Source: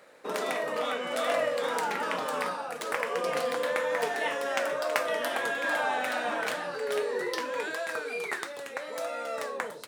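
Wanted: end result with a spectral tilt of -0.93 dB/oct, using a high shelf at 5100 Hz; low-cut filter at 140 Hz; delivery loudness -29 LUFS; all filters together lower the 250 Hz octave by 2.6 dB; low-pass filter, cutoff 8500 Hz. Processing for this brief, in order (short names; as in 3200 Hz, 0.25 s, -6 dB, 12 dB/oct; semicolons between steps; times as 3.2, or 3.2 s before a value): HPF 140 Hz; LPF 8500 Hz; bell 250 Hz -3 dB; high shelf 5100 Hz +7.5 dB; gain +1.5 dB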